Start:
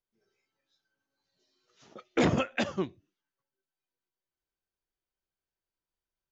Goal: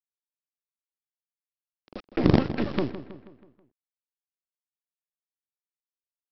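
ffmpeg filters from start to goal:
-filter_complex "[0:a]acrossover=split=120[a][b];[b]acompressor=threshold=-30dB:ratio=10[c];[a][c]amix=inputs=2:normalize=0,asplit=2[d][e];[e]alimiter=level_in=7dB:limit=-24dB:level=0:latency=1:release=15,volume=-7dB,volume=-1.5dB[f];[d][f]amix=inputs=2:normalize=0,bass=f=250:g=8,treble=f=4k:g=-15,aresample=11025,acrusher=bits=4:dc=4:mix=0:aa=0.000001,aresample=44100,equalizer=f=310:w=0.84:g=9.5,asplit=2[g][h];[h]adelay=161,lowpass=f=4k:p=1,volume=-13dB,asplit=2[i][j];[j]adelay=161,lowpass=f=4k:p=1,volume=0.52,asplit=2[k][l];[l]adelay=161,lowpass=f=4k:p=1,volume=0.52,asplit=2[m][n];[n]adelay=161,lowpass=f=4k:p=1,volume=0.52,asplit=2[o][p];[p]adelay=161,lowpass=f=4k:p=1,volume=0.52[q];[g][i][k][m][o][q]amix=inputs=6:normalize=0"

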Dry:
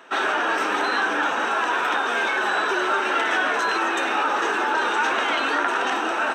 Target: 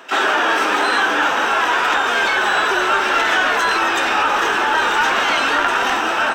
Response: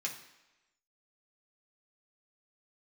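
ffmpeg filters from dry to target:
-filter_complex "[0:a]asplit=2[a][b];[b]asetrate=88200,aresample=44100,atempo=0.5,volume=-12dB[c];[a][c]amix=inputs=2:normalize=0,acontrast=57,asubboost=boost=7.5:cutoff=110"

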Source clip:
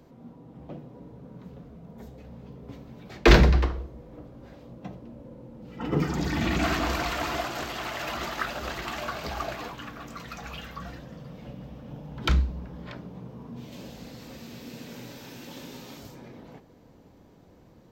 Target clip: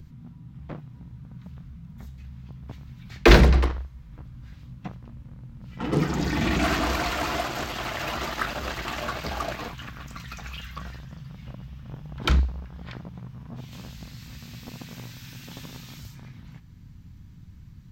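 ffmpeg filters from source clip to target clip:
-filter_complex "[0:a]acrossover=split=160|1200[a][b][c];[a]acompressor=mode=upward:threshold=-35dB:ratio=2.5[d];[b]acrusher=bits=5:mix=0:aa=0.5[e];[d][e][c]amix=inputs=3:normalize=0,volume=2dB"

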